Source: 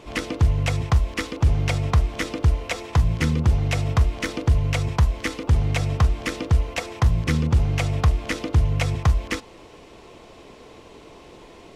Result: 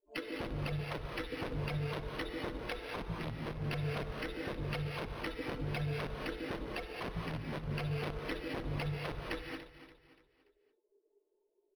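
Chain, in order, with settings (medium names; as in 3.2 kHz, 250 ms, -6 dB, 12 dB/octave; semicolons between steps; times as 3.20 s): expander on every frequency bin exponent 3; integer overflow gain 20.5 dB; treble shelf 5.7 kHz +3.5 dB; peak limiter -26.5 dBFS, peak gain reduction 10.5 dB; compressor with a negative ratio -38 dBFS, ratio -0.5; level-controlled noise filter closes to 1.1 kHz, open at -39.5 dBFS; feedback delay 288 ms, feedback 39%, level -13 dB; gated-style reverb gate 250 ms rising, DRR 1.5 dB; decimation joined by straight lines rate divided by 6×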